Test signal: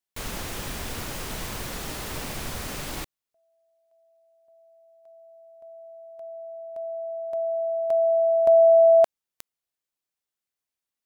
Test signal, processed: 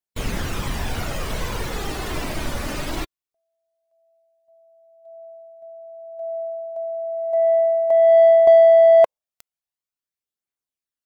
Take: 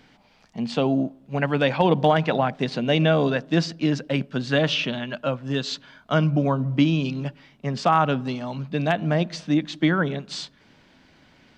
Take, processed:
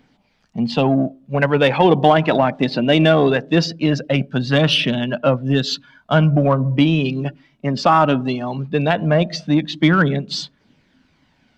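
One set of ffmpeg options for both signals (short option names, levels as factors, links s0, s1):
-filter_complex "[0:a]afftdn=nr=13:nf=-40,adynamicequalizer=threshold=0.00631:dfrequency=1500:dqfactor=6.9:tfrequency=1500:tqfactor=6.9:attack=5:release=100:ratio=0.417:range=2.5:mode=cutabove:tftype=bell,aphaser=in_gain=1:out_gain=1:delay=3.5:decay=0.34:speed=0.19:type=triangular,asplit=2[s0][s1];[s1]asoftclip=type=tanh:threshold=0.0944,volume=0.501[s2];[s0][s2]amix=inputs=2:normalize=0,volume=1.58"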